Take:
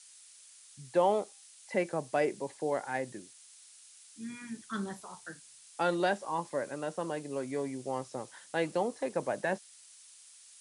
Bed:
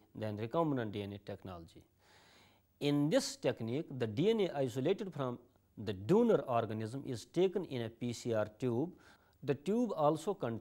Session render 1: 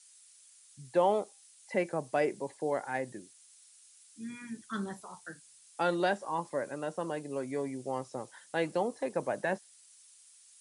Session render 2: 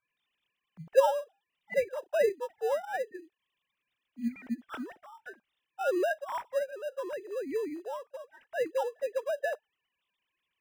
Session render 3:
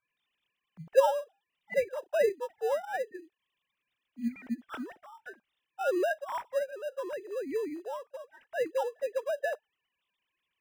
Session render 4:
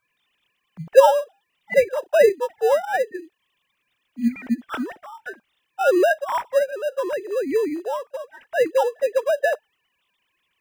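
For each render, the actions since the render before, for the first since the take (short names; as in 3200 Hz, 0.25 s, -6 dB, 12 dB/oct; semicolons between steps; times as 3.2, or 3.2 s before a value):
denoiser 6 dB, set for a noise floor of -56 dBFS
sine-wave speech; in parallel at -12 dB: sample-and-hold 20×
nothing audible
gain +11.5 dB; limiter -1 dBFS, peak gain reduction 1 dB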